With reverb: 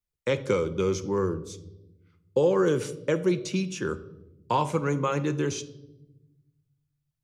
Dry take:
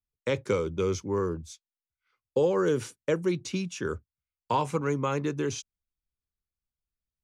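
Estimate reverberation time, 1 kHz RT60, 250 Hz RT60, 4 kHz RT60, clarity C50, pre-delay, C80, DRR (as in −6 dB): 1.0 s, 0.75 s, 1.6 s, 0.65 s, 15.5 dB, 6 ms, 18.5 dB, 10.0 dB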